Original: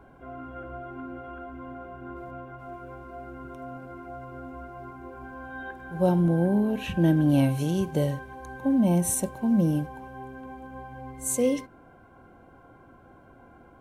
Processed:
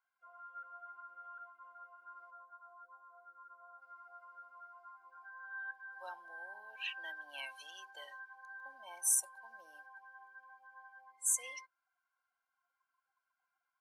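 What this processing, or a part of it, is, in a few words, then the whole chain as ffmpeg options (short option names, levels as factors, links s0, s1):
headphones lying on a table: -filter_complex "[0:a]asplit=3[s0][s1][s2];[s0]afade=t=out:st=2.3:d=0.02[s3];[s1]lowpass=f=1500:w=0.5412,lowpass=f=1500:w=1.3066,afade=t=in:st=2.3:d=0.02,afade=t=out:st=3.8:d=0.02[s4];[s2]afade=t=in:st=3.8:d=0.02[s5];[s3][s4][s5]amix=inputs=3:normalize=0,afftdn=nr=23:nf=-38,highpass=150,highpass=f=1200:w=0.5412,highpass=f=1200:w=1.3066,equalizer=f=4800:t=o:w=0.44:g=10.5,volume=0.75"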